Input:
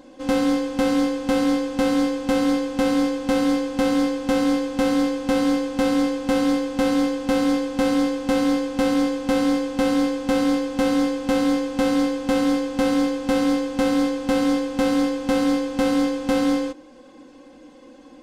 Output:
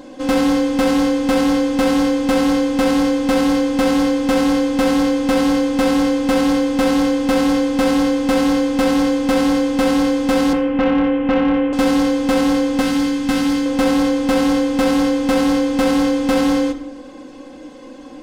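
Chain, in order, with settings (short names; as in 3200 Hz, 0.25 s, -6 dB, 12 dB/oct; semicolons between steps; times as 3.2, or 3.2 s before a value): 10.53–11.73 steep low-pass 3100 Hz 96 dB/oct; 12.81–13.66 bell 580 Hz -11.5 dB 0.92 oct; soft clip -19 dBFS, distortion -14 dB; shoebox room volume 200 m³, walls mixed, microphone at 0.34 m; gain +8.5 dB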